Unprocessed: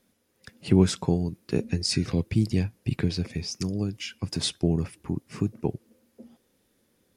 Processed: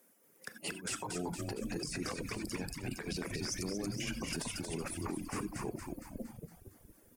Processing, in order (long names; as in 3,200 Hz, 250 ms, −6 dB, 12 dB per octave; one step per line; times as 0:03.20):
in parallel at +3 dB: output level in coarse steps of 22 dB
on the sum: high-pass filter 330 Hz 12 dB per octave
compressor whose output falls as the input rises −33 dBFS, ratio −1
bit-depth reduction 12 bits, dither none
parametric band 3,900 Hz −12 dB 1.1 octaves
on a send: echo with shifted repeats 231 ms, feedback 56%, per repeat −71 Hz, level −4 dB
on the sum: reverb whose tail is shaped and stops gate 110 ms rising, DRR 7 dB
reverb reduction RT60 0.63 s
brickwall limiter −25 dBFS, peak gain reduction 9 dB
high-shelf EQ 7,600 Hz +7.5 dB
level −3.5 dB